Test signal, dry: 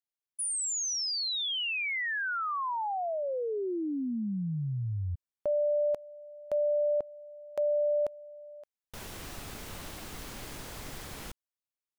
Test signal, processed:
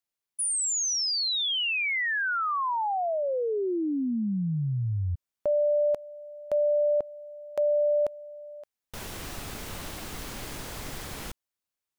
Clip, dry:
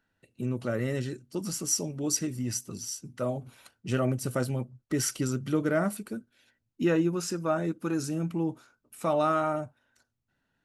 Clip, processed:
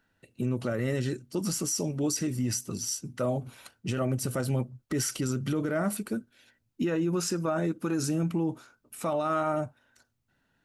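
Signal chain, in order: limiter -25 dBFS; gain +4.5 dB

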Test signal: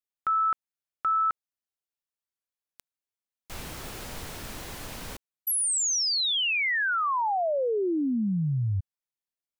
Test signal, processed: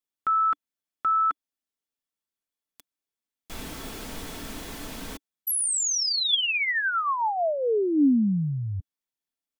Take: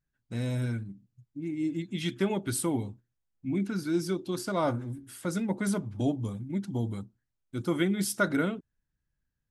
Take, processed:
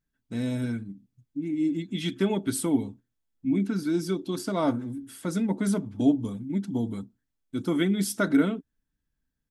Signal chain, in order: comb 4.5 ms, depth 34%; small resonant body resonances 290/3400 Hz, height 9 dB, ringing for 40 ms

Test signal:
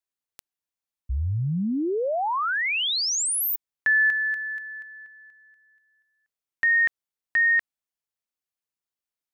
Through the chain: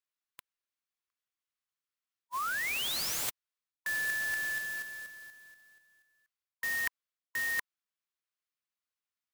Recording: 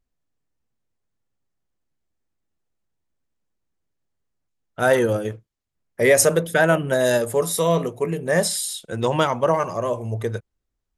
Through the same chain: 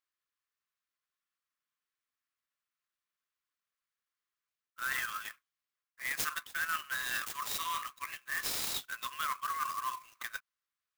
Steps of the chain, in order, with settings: brick-wall FIR band-pass 1000–8700 Hz; reverse; compressor 8:1, threshold -32 dBFS; reverse; clock jitter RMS 0.034 ms

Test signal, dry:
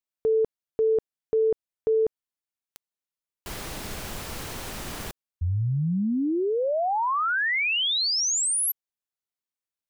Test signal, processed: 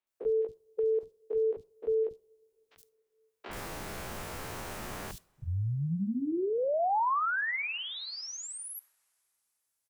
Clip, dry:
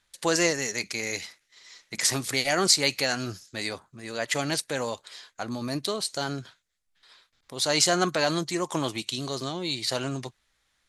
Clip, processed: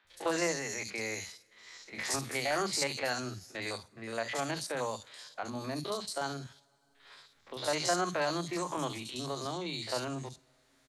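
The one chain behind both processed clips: stepped spectrum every 50 ms; dynamic EQ 930 Hz, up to +5 dB, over -41 dBFS, Q 1.1; three bands offset in time mids, lows, highs 40/70 ms, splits 240/3600 Hz; two-slope reverb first 0.37 s, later 2.5 s, from -21 dB, DRR 18 dB; three-band squash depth 40%; gain -5.5 dB

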